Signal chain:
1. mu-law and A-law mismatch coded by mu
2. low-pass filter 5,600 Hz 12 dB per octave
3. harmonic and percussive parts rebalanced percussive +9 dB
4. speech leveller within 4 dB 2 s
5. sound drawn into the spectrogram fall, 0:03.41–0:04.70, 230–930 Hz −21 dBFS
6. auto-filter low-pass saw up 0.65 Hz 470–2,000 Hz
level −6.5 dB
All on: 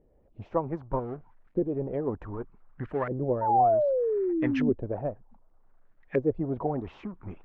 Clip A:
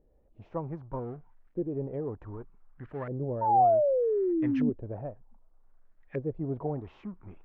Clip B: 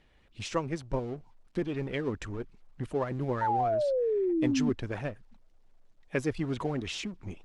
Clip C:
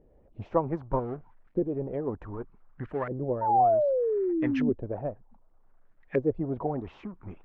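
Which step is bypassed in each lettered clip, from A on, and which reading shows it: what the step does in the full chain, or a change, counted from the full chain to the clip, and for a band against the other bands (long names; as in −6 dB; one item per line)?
3, 2 kHz band −7.0 dB
6, 2 kHz band +6.5 dB
4, change in momentary loudness spread +1 LU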